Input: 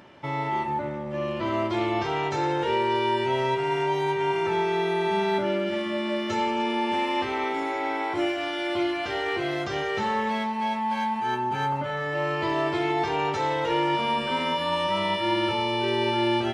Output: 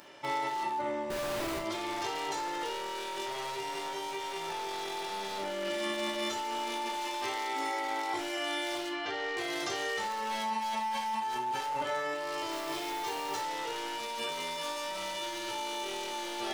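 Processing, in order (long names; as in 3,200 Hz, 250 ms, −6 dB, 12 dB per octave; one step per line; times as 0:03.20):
wavefolder on the positive side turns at −22.5 dBFS
bass and treble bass −13 dB, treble +13 dB
compressor whose output falls as the input rises −31 dBFS, ratio −1
0:01.10–0:01.59: comparator with hysteresis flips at −35.5 dBFS
0:08.89–0:09.37: high-frequency loss of the air 160 metres
0:12.51–0:13.41: noise that follows the level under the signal 15 dB
convolution reverb, pre-delay 7 ms, DRR 2.5 dB
level −6.5 dB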